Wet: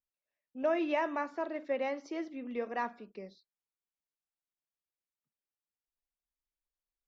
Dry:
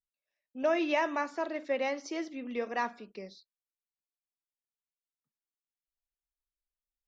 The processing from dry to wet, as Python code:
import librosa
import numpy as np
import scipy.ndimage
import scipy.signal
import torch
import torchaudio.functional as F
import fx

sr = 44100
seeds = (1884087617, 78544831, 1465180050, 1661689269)

y = fx.lowpass(x, sr, hz=1900.0, slope=6)
y = y * librosa.db_to_amplitude(-1.5)